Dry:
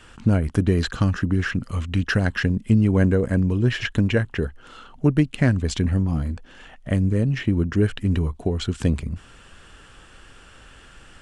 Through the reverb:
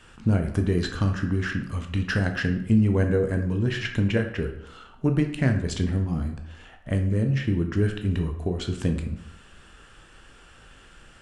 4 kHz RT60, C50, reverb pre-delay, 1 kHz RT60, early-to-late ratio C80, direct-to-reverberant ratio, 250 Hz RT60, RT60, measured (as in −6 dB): 0.50 s, 8.5 dB, 11 ms, 0.75 s, 11.5 dB, 4.5 dB, 0.75 s, 0.75 s